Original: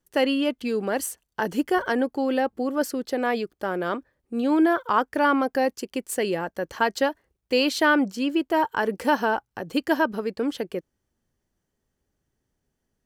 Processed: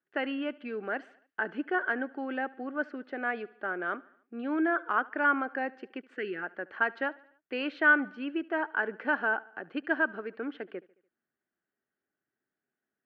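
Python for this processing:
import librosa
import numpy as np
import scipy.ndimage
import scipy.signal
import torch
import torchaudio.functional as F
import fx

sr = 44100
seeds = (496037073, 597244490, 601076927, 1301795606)

y = fx.cabinet(x, sr, low_hz=320.0, low_slope=12, high_hz=2500.0, hz=(510.0, 960.0, 1500.0), db=(-8, -8, 8))
y = fx.spec_box(y, sr, start_s=6.16, length_s=0.27, low_hz=510.0, high_hz=1200.0, gain_db=-14)
y = fx.echo_feedback(y, sr, ms=73, feedback_pct=55, wet_db=-22.5)
y = y * librosa.db_to_amplitude(-5.5)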